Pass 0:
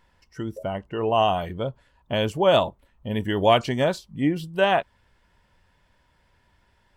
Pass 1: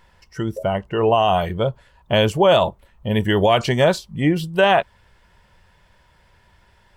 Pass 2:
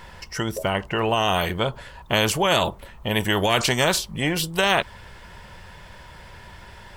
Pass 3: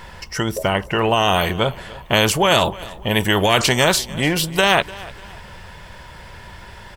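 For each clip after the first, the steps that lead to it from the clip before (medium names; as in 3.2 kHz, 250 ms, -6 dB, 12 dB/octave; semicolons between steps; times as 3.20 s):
peaking EQ 270 Hz -10.5 dB 0.26 oct; peak limiter -13.5 dBFS, peak gain reduction 8 dB; trim +8 dB
spectrum-flattening compressor 2:1
feedback delay 297 ms, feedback 35%, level -20 dB; trim +4.5 dB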